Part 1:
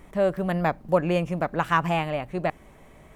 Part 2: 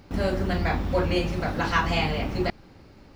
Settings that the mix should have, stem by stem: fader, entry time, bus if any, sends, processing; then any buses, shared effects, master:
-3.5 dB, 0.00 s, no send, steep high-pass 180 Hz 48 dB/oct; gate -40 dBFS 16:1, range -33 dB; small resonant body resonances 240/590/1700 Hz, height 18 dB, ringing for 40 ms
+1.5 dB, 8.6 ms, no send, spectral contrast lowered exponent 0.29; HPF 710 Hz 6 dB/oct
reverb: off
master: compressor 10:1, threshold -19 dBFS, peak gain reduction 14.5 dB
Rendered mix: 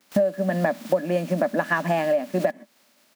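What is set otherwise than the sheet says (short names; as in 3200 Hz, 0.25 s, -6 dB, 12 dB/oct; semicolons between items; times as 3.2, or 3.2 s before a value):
stem 1 -3.5 dB -> +4.5 dB; stem 2 +1.5 dB -> -10.5 dB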